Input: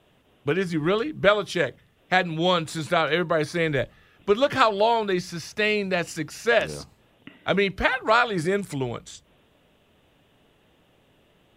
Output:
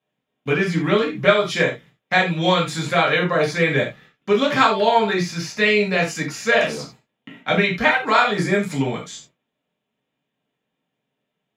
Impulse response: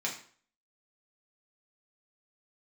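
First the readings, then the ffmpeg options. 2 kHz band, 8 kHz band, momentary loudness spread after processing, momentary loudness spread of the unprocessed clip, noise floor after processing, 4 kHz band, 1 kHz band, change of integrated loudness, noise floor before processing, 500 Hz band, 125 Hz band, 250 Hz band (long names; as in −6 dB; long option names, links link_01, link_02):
+6.0 dB, +5.5 dB, 12 LU, 11 LU, −79 dBFS, +4.5 dB, +4.0 dB, +4.5 dB, −62 dBFS, +3.5 dB, +6.0 dB, +5.0 dB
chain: -filter_complex "[0:a]agate=range=-23dB:threshold=-51dB:ratio=16:detection=peak,asplit=2[link_01][link_02];[link_02]alimiter=limit=-16dB:level=0:latency=1,volume=-3dB[link_03];[link_01][link_03]amix=inputs=2:normalize=0[link_04];[1:a]atrim=start_sample=2205,atrim=end_sample=4410[link_05];[link_04][link_05]afir=irnorm=-1:irlink=0,volume=-2.5dB"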